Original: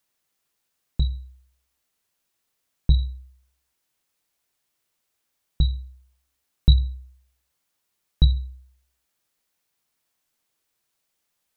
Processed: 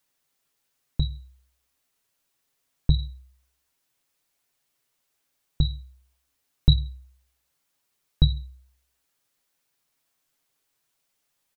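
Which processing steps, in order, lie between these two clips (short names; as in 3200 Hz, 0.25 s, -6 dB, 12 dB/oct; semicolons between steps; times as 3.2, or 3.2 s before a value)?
comb 7.3 ms, depth 48%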